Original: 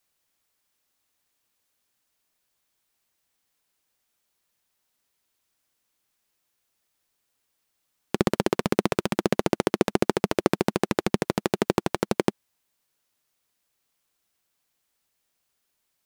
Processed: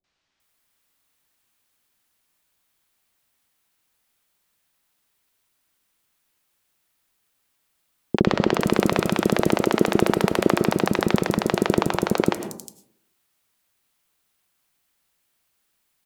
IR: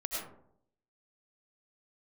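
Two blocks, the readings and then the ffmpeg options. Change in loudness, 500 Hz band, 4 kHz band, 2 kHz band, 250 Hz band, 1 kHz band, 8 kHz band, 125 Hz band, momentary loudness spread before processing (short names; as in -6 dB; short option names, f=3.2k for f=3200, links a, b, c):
+4.0 dB, +3.5 dB, +4.5 dB, +5.5 dB, +5.0 dB, +4.5 dB, +3.5 dB, +5.5 dB, 3 LU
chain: -filter_complex "[0:a]acrossover=split=520|5900[a][b][c];[b]adelay=40[d];[c]adelay=400[e];[a][d][e]amix=inputs=3:normalize=0,asplit=2[f][g];[1:a]atrim=start_sample=2205[h];[g][h]afir=irnorm=-1:irlink=0,volume=-11dB[i];[f][i]amix=inputs=2:normalize=0,volume=3.5dB"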